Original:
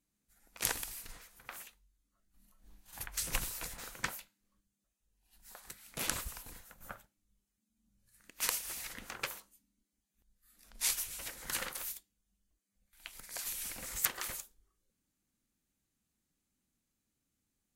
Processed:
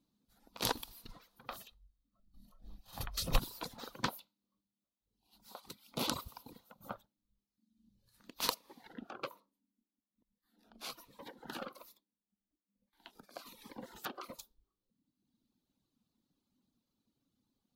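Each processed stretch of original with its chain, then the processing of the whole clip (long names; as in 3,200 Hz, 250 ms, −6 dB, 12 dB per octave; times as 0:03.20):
0:01.48–0:03.39: low-shelf EQ 120 Hz +8 dB + comb filter 1.6 ms, depth 35%
0:04.09–0:06.96: high-pass filter 110 Hz 6 dB per octave + notch filter 1,700 Hz, Q 5
0:08.54–0:14.39: three-way crossover with the lows and the highs turned down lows −16 dB, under 180 Hz, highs −14 dB, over 2,300 Hz + phaser whose notches keep moving one way falling 1.2 Hz
whole clip: reverb reduction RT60 1.3 s; octave-band graphic EQ 125/250/500/1,000/2,000/4,000/8,000 Hz +6/+11/+5/+9/−8/+12/−9 dB; level −2 dB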